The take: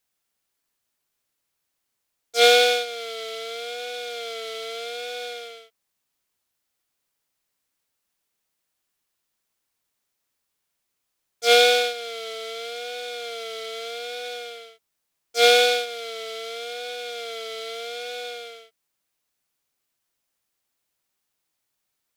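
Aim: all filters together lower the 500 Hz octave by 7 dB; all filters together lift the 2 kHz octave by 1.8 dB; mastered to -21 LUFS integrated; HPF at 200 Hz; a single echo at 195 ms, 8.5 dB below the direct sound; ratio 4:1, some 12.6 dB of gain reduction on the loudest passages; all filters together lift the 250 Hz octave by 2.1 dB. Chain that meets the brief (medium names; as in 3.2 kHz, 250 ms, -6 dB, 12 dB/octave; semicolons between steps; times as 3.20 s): high-pass 200 Hz; peaking EQ 250 Hz +5.5 dB; peaking EQ 500 Hz -8.5 dB; peaking EQ 2 kHz +3 dB; compression 4:1, threshold -28 dBFS; delay 195 ms -8.5 dB; trim +10.5 dB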